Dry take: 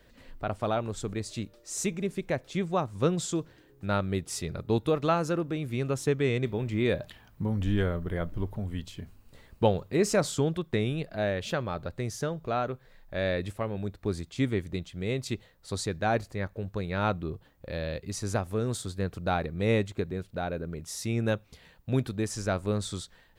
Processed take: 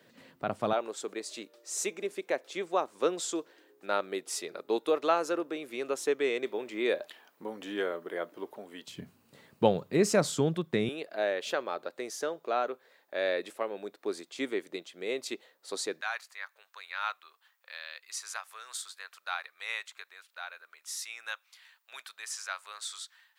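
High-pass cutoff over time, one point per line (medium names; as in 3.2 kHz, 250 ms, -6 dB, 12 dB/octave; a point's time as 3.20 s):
high-pass 24 dB/octave
140 Hz
from 0.73 s 340 Hz
from 8.88 s 140 Hz
from 10.89 s 330 Hz
from 16.01 s 1.1 kHz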